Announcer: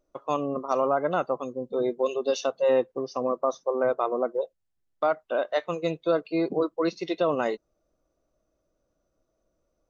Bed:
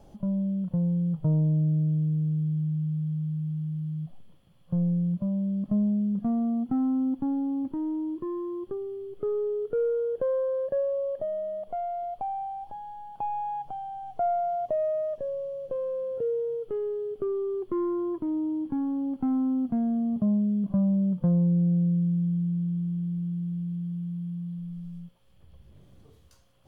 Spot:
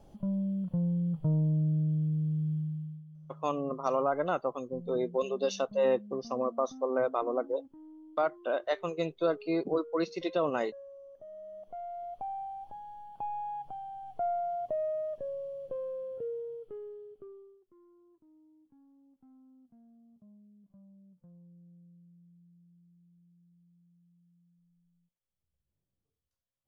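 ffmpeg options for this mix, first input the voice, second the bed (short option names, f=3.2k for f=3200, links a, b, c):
-filter_complex "[0:a]adelay=3150,volume=-4.5dB[a];[1:a]volume=11.5dB,afade=t=out:st=2.52:d=0.52:silence=0.141254,afade=t=in:st=11.14:d=1.19:silence=0.16788,afade=t=out:st=15.64:d=1.96:silence=0.0398107[b];[a][b]amix=inputs=2:normalize=0"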